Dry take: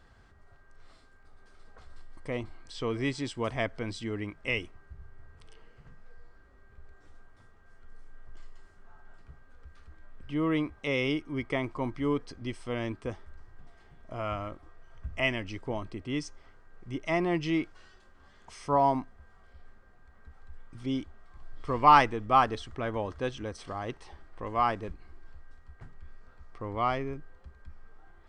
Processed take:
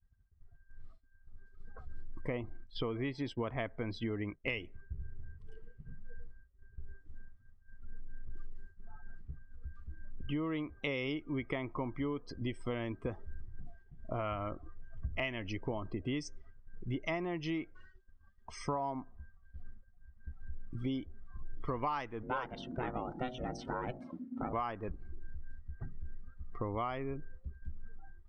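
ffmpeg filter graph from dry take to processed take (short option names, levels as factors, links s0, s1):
-filter_complex "[0:a]asettb=1/sr,asplit=3[s0][s1][s2];[s0]atrim=end=2.334[s3];[s1]atrim=start=2.33:end=4.49,asetpts=PTS-STARTPTS,afade=t=in:d=0.004:c=qsin,afade=t=out:st=2.156:d=0.004:c=qsin,aemphasis=mode=reproduction:type=50fm,agate=range=0.0224:threshold=0.00708:ratio=3:release=100:detection=peak[s4];[s2]atrim=start=4.486[s5];[s3][s4]acrossfade=d=0.004:c1=hsin:c2=qsin[s6];[s6][s5]acrossfade=d=0.004:c1=qsin:c2=hsin,asettb=1/sr,asplit=3[s7][s8][s9];[s7]atrim=end=22.234[s10];[s8]atrim=start=22.23:end=24.53,asetpts=PTS-STARTPTS,afade=t=in:d=0.004:c=qsin,afade=t=out:st=2.296:d=0.004:c=qsin,bandreject=f=54.46:t=h:w=4,bandreject=f=108.92:t=h:w=4,bandreject=f=163.38:t=h:w=4,bandreject=f=217.84:t=h:w=4,bandreject=f=272.3:t=h:w=4,bandreject=f=326.76:t=h:w=4,bandreject=f=381.22:t=h:w=4,bandreject=f=435.68:t=h:w=4,bandreject=f=490.14:t=h:w=4,bandreject=f=544.6:t=h:w=4,bandreject=f=599.06:t=h:w=4,bandreject=f=653.52:t=h:w=4,aeval=exprs='val(0)*sin(2*PI*250*n/s)':c=same[s11];[s9]atrim=start=24.526[s12];[s10][s11]acrossfade=d=0.004:c1=hsin:c2=qsin[s13];[s13][s12]acrossfade=d=0.004:c1=qsin:c2=hsin,afftdn=nr=24:nf=-50,agate=range=0.0224:threshold=0.00355:ratio=3:detection=peak,acompressor=threshold=0.0112:ratio=12,volume=2"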